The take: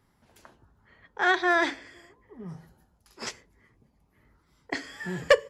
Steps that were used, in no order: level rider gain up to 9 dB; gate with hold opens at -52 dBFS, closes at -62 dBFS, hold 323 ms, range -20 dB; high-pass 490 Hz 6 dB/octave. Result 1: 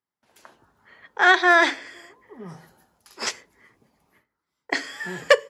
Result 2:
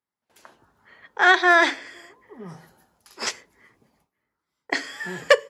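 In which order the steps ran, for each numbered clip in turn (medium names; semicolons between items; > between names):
gate with hold > high-pass > level rider; high-pass > gate with hold > level rider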